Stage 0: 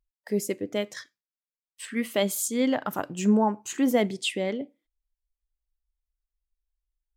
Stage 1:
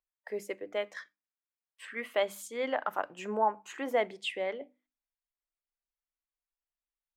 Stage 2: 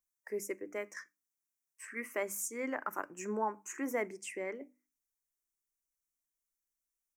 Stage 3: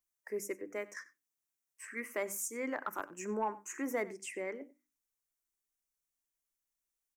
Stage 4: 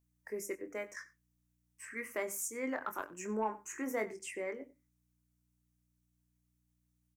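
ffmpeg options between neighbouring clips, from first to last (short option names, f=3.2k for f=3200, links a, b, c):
-filter_complex "[0:a]acrossover=split=480 2700:gain=0.0794 1 0.141[a][b][c];[a][b][c]amix=inputs=3:normalize=0,bandreject=f=50:t=h:w=6,bandreject=f=100:t=h:w=6,bandreject=f=150:t=h:w=6,bandreject=f=200:t=h:w=6,bandreject=f=250:t=h:w=6,bandreject=f=300:t=h:w=6"
-af "firequalizer=gain_entry='entry(150,0);entry(340,6);entry(490,-4);entry(730,-9);entry(1000,-1);entry(2300,0);entry(3500,-24);entry(5700,10)':delay=0.05:min_phase=1,volume=-2.5dB"
-filter_complex "[0:a]asoftclip=type=tanh:threshold=-22dB,asplit=2[a][b];[b]adelay=93.29,volume=-19dB,highshelf=f=4k:g=-2.1[c];[a][c]amix=inputs=2:normalize=0"
-filter_complex "[0:a]aeval=exprs='val(0)+0.000178*(sin(2*PI*60*n/s)+sin(2*PI*2*60*n/s)/2+sin(2*PI*3*60*n/s)/3+sin(2*PI*4*60*n/s)/4+sin(2*PI*5*60*n/s)/5)':c=same,asplit=2[a][b];[b]adelay=23,volume=-8dB[c];[a][c]amix=inputs=2:normalize=0,volume=-1dB"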